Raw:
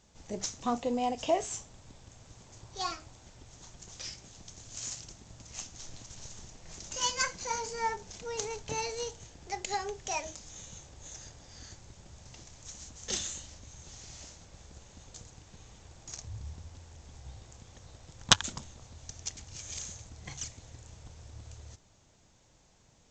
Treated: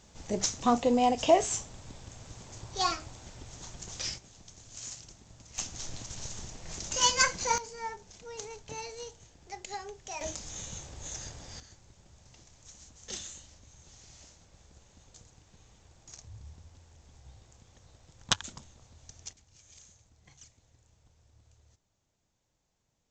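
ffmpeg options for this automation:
-af "asetnsamples=n=441:p=0,asendcmd='4.18 volume volume -3dB;5.58 volume volume 6dB;7.58 volume volume -6dB;10.21 volume volume 6dB;11.6 volume volume -6dB;19.33 volume volume -15dB',volume=2"

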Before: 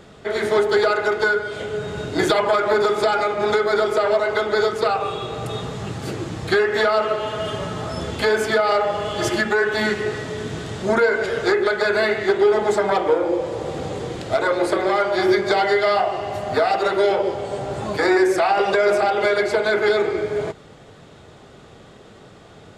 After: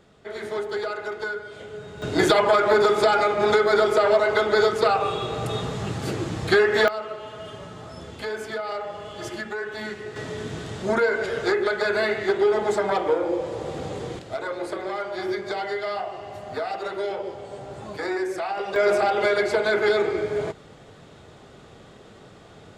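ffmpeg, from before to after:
-af "asetnsamples=n=441:p=0,asendcmd='2.02 volume volume 0dB;6.88 volume volume -12dB;10.16 volume volume -4dB;14.19 volume volume -10.5dB;18.76 volume volume -2.5dB',volume=0.282"

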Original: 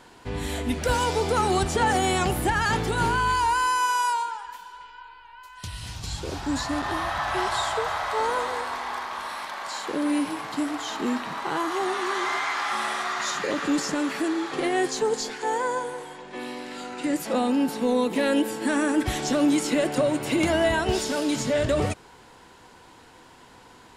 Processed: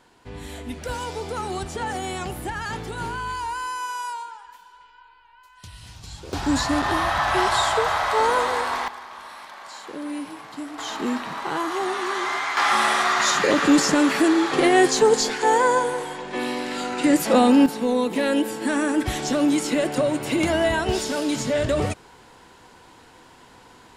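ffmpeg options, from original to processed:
-af "asetnsamples=n=441:p=0,asendcmd='6.33 volume volume 5.5dB;8.88 volume volume -6.5dB;10.78 volume volume 1dB;12.57 volume volume 8dB;17.66 volume volume 1dB',volume=0.473"

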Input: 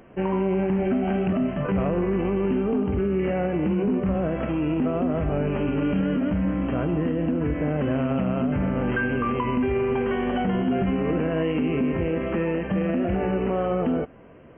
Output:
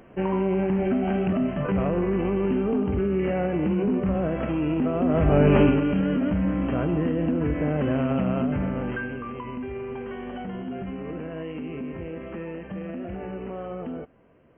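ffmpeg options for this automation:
-af "volume=2.82,afade=t=in:st=4.97:d=0.63:silence=0.334965,afade=t=out:st=5.6:d=0.22:silence=0.354813,afade=t=out:st=8.34:d=0.88:silence=0.316228"

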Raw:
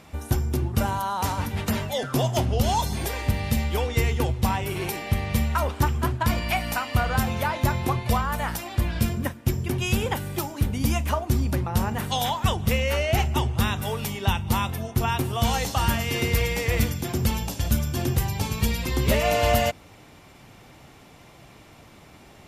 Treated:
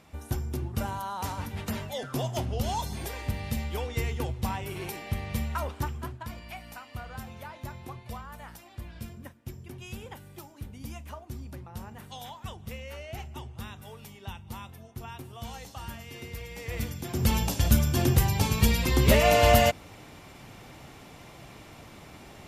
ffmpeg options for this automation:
-af "volume=3.55,afade=t=out:st=5.63:d=0.66:silence=0.334965,afade=t=in:st=16.47:d=0.64:silence=0.298538,afade=t=in:st=17.11:d=0.26:silence=0.398107"

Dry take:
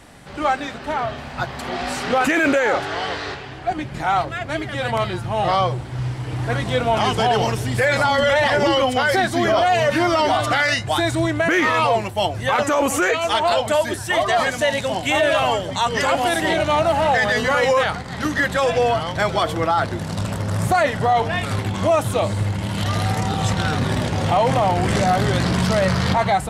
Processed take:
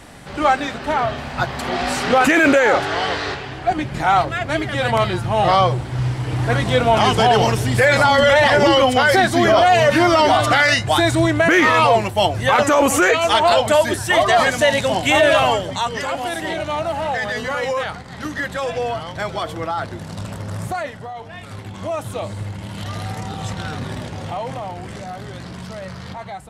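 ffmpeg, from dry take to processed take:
-af "volume=4.73,afade=t=out:st=15.34:d=0.67:silence=0.354813,afade=t=out:st=20.53:d=0.6:silence=0.281838,afade=t=in:st=21.13:d=0.99:silence=0.334965,afade=t=out:st=23.8:d=1.18:silence=0.421697"

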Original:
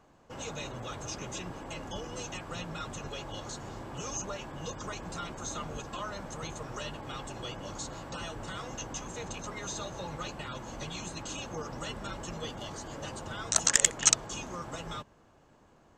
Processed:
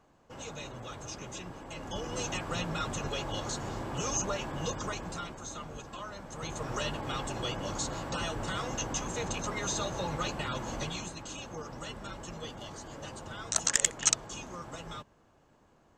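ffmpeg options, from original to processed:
-af "volume=5.01,afade=t=in:st=1.7:d=0.56:silence=0.398107,afade=t=out:st=4.64:d=0.78:silence=0.354813,afade=t=in:st=6.28:d=0.44:silence=0.354813,afade=t=out:st=10.74:d=0.42:silence=0.398107"

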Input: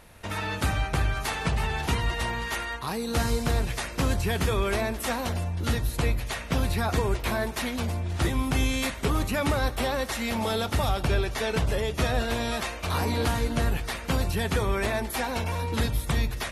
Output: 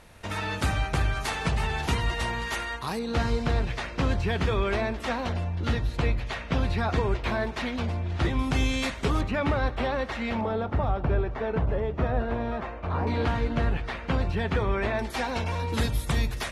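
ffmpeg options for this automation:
-af "asetnsamples=n=441:p=0,asendcmd='2.99 lowpass f 3900;8.39 lowpass f 6500;9.21 lowpass f 2800;10.41 lowpass f 1300;13.07 lowpass f 2800;14.99 lowpass f 6000;15.69 lowpass f 11000',lowpass=9500"

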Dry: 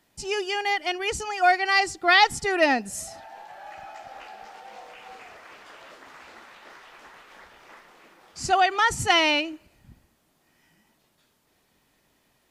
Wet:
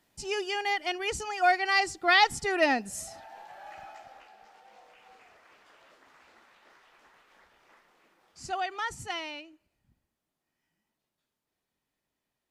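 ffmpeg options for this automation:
-af "volume=0.631,afade=t=out:st=3.82:d=0.44:silence=0.398107,afade=t=out:st=8.85:d=0.45:silence=0.473151"

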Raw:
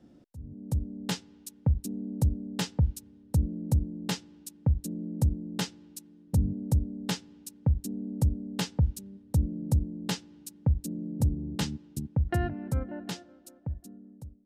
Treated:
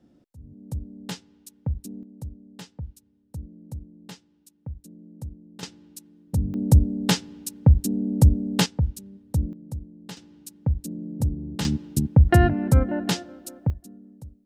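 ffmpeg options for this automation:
-af "asetnsamples=n=441:p=0,asendcmd='2.03 volume volume -11dB;5.63 volume volume 1dB;6.54 volume volume 10dB;8.66 volume volume 1.5dB;9.53 volume volume -8.5dB;10.17 volume volume 1.5dB;11.65 volume volume 12dB;13.7 volume volume 2.5dB',volume=0.75"

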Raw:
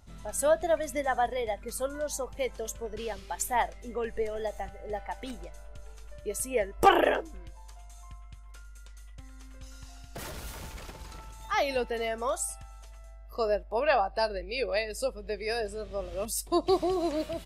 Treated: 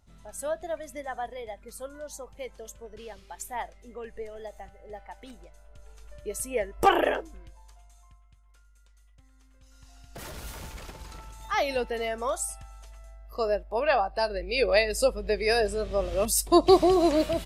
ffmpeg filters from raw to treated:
-af "volume=7.94,afade=t=in:st=5.62:d=0.55:silence=0.473151,afade=t=out:st=7.08:d=1.15:silence=0.298538,afade=t=in:st=9.64:d=0.84:silence=0.251189,afade=t=in:st=14.27:d=0.44:silence=0.473151"

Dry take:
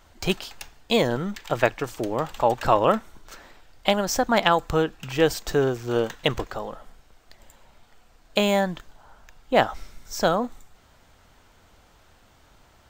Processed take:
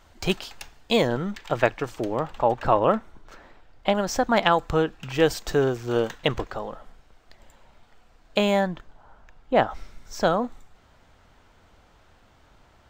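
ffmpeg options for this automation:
-af "asetnsamples=n=441:p=0,asendcmd='1.05 lowpass f 4200;2.19 lowpass f 1700;3.95 lowpass f 4400;5.14 lowpass f 8900;6.18 lowpass f 4000;8.67 lowpass f 1700;9.71 lowpass f 3600',lowpass=f=8600:p=1"

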